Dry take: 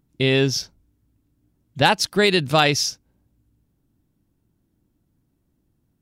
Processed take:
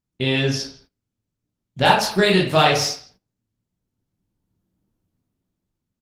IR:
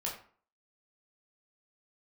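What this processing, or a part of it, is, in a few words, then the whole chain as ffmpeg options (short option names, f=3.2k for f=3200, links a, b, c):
speakerphone in a meeting room: -filter_complex "[1:a]atrim=start_sample=2205[a];[0:a][a]afir=irnorm=-1:irlink=0,asplit=2[b][c];[c]adelay=160,highpass=300,lowpass=3.4k,asoftclip=type=hard:threshold=-10.5dB,volume=-15dB[d];[b][d]amix=inputs=2:normalize=0,dynaudnorm=f=280:g=9:m=12dB,agate=range=-16dB:threshold=-49dB:ratio=16:detection=peak,volume=-1dB" -ar 48000 -c:a libopus -b:a 20k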